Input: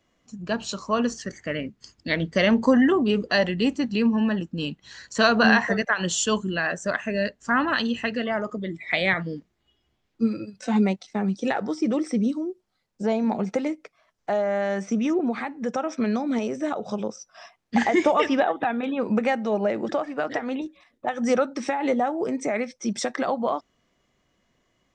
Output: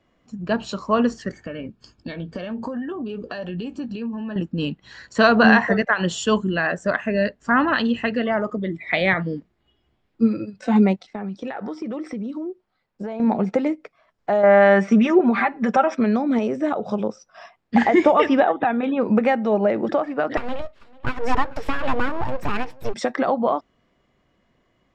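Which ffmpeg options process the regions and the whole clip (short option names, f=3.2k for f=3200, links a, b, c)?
-filter_complex "[0:a]asettb=1/sr,asplit=3[a][b][c];[a]atrim=end=1.344[d];[b]atrim=start=1.34:end=4.36,asetpts=PTS-STARTPTS,afade=t=in:d=0.004:c=qsin,afade=t=out:st=3.016:d=0.004:c=qsin,acompressor=threshold=-31dB:ratio=10:attack=3.2:release=140:knee=1:detection=peak,asuperstop=centerf=2000:order=8:qfactor=6.8,asplit=2[e][f];[f]adelay=17,volume=-12.5dB[g];[e][g]amix=inputs=2:normalize=0,atrim=end_sample=133182[h];[c]atrim=start=4.356[i];[d][h]acrossfade=d=0.004:c1=hsin:c2=qsin[j];[j][i]acrossfade=d=0.004:c1=qsin:c2=hsin,asettb=1/sr,asplit=3[k][l][m];[k]atrim=end=11.074[n];[l]atrim=start=11.07:end=13.2,asetpts=PTS-STARTPTS,afade=t=in:d=0.004:c=qsin,afade=t=out:st=2.126:d=0.004:c=qsin,lowpass=f=2.7k:p=1,tiltshelf=f=640:g=-4,acompressor=threshold=-30dB:ratio=12:attack=3.2:release=140:knee=1:detection=peak[o];[m]atrim=start=13.196[p];[n][o]acrossfade=d=0.004:c1=hsin:c2=qsin[q];[q][p]acrossfade=d=0.004:c1=qsin:c2=hsin,asettb=1/sr,asplit=3[r][s][t];[r]atrim=end=14.434[u];[s]atrim=start=14.43:end=15.95,asetpts=PTS-STARTPTS,afade=t=in:d=0.004:c=qsin,afade=t=out:st=1.516:d=0.004:c=qsin,equalizer=f=1.8k:w=0.47:g=7,aecho=1:1:5.1:0.72,atrim=end_sample=67032[v];[t]atrim=start=15.946[w];[u][v]acrossfade=d=0.004:c1=hsin:c2=qsin[x];[x][w]acrossfade=d=0.004:c1=qsin:c2=hsin,asettb=1/sr,asplit=3[y][z][aa];[y]atrim=end=20.374[ab];[z]atrim=start=20.37:end=22.94,asetpts=PTS-STARTPTS,afade=t=in:d=0.004:c=qsin,afade=t=out:st=2.566:d=0.004:c=qsin,aeval=exprs='abs(val(0))':c=same,aecho=1:1:443:0.0708,atrim=end_sample=113337[ac];[aa]atrim=start=22.936[ad];[ab][ac]acrossfade=d=0.004:c1=hsin:c2=qsin[ae];[ae][ad]acrossfade=d=0.004:c1=qsin:c2=hsin,aemphasis=mode=reproduction:type=75kf,bandreject=f=6.1k:w=12,volume=5dB"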